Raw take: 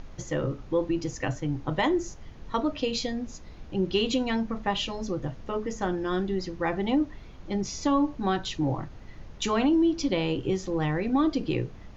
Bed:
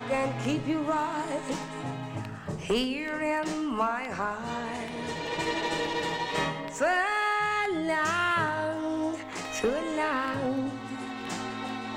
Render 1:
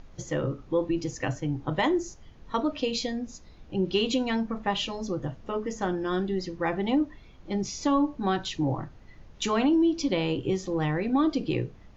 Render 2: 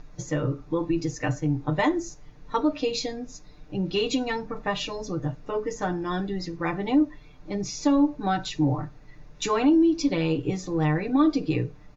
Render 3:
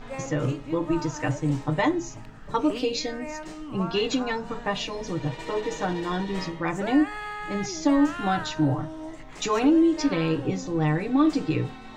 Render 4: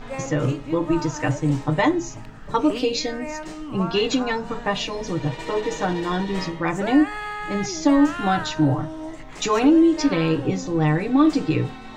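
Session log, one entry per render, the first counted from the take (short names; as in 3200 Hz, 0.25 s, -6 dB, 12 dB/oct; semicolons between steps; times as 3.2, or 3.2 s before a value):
noise print and reduce 6 dB
notch 3100 Hz, Q 6.3; comb 6.7 ms, depth 73%
add bed -8 dB
gain +4 dB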